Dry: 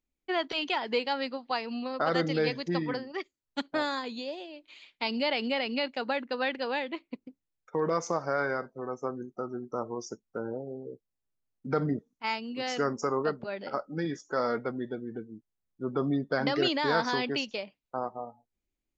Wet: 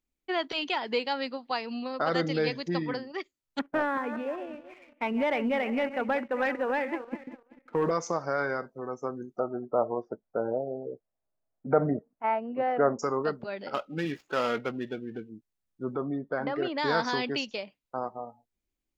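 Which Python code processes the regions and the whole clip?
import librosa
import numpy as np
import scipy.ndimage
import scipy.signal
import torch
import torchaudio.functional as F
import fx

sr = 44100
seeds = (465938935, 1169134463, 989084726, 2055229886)

y = fx.chain(x, sr, fx.reverse_delay_fb(ms=192, feedback_pct=41, wet_db=-12),
    fx.steep_lowpass(hz=2300.0, slope=36),
    fx.leveller(passes=1), at=(3.59, 7.91))
y = fx.chain(y, sr, fx.lowpass(hz=1900.0, slope=24),
    fx.peak_eq(hz=650.0, db=14.0, octaves=0.7), at=(9.39, 12.99))
y = fx.chain(y, sr, fx.median_filter(points=15),
    fx.peak_eq(hz=2700.0, db=14.5, octaves=0.88), at=(13.74, 15.29))
y = fx.chain(y, sr, fx.lowpass(hz=1500.0, slope=12),
    fx.peak_eq(hz=140.0, db=-6.0, octaves=2.6), at=(15.96, 16.78))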